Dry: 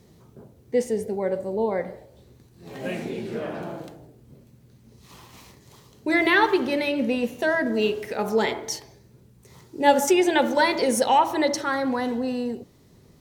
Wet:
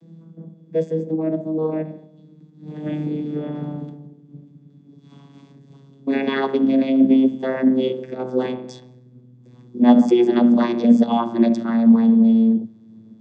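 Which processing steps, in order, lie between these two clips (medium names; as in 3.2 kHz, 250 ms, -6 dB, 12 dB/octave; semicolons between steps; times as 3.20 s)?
vocoder on a note that slides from E3, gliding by -7 st; high-pass 160 Hz; small resonant body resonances 210/3400 Hz, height 17 dB, ringing for 40 ms; trim -2 dB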